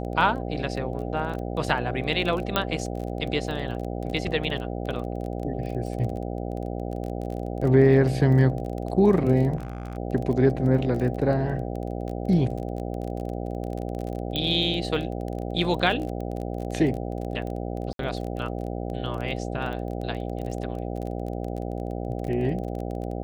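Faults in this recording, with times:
mains buzz 60 Hz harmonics 13 −31 dBFS
surface crackle 22 per second −31 dBFS
0:02.56: click −8 dBFS
0:09.56–0:09.97: clipping −28.5 dBFS
0:14.36: click −15 dBFS
0:17.93–0:17.99: drop-out 62 ms

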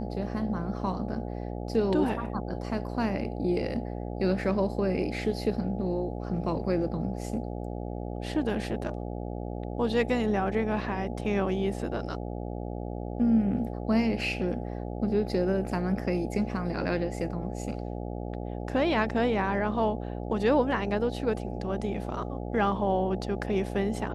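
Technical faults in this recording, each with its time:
mains buzz 60 Hz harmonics 14 −35 dBFS

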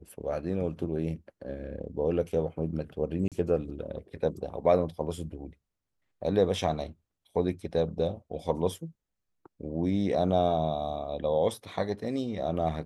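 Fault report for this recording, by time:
0:03.28–0:03.32: drop-out 37 ms

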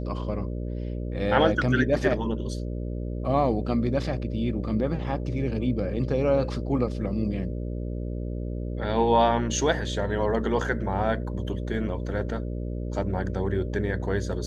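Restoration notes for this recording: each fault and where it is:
mains buzz 60 Hz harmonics 10 −31 dBFS

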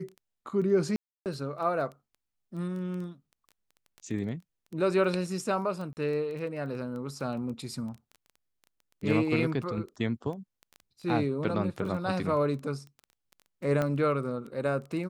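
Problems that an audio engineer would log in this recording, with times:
surface crackle 10 per second −36 dBFS
0:00.96–0:01.26: drop-out 298 ms
0:05.93–0:05.97: drop-out 39 ms
0:13.82: click −17 dBFS

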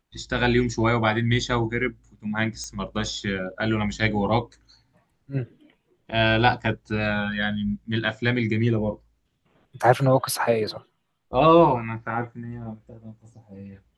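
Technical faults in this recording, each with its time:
0:02.64: click −21 dBFS

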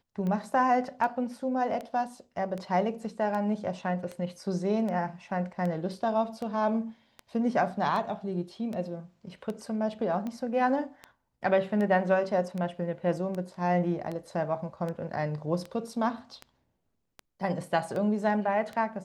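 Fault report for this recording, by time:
scratch tick 78 rpm −24 dBFS

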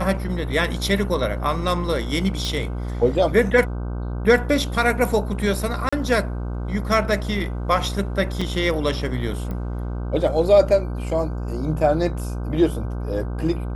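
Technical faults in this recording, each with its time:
mains buzz 60 Hz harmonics 26 −27 dBFS
0:02.45: click
0:05.89–0:05.92: drop-out 35 ms
0:08.41–0:08.42: drop-out 5.2 ms
0:09.51: click −19 dBFS

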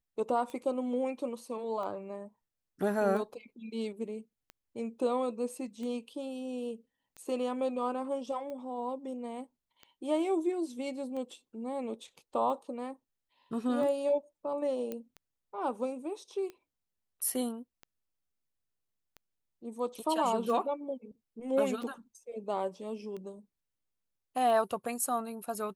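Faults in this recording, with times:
scratch tick 45 rpm −31 dBFS
0:14.92: click −24 dBFS

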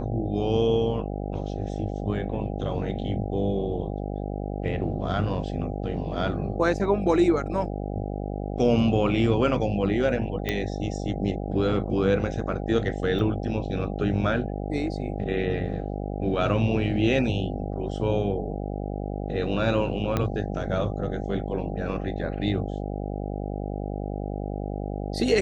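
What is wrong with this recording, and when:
mains buzz 50 Hz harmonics 16 −31 dBFS
0:10.49: click −12 dBFS
0:13.19: drop-out 3.5 ms
0:20.17: click −11 dBFS

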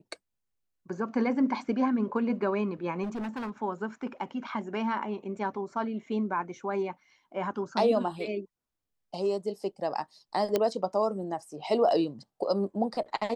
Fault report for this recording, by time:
0:03.03–0:03.51: clipping −31.5 dBFS
0:10.56: click −12 dBFS

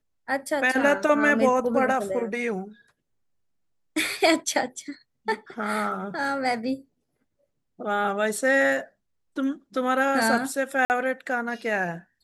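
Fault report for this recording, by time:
0:10.85–0:10.90: drop-out 49 ms

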